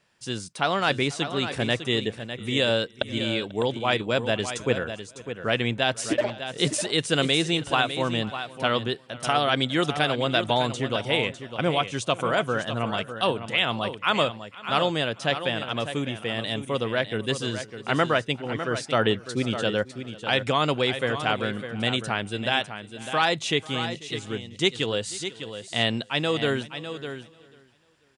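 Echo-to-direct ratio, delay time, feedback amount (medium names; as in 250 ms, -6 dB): -9.5 dB, 491 ms, no regular repeats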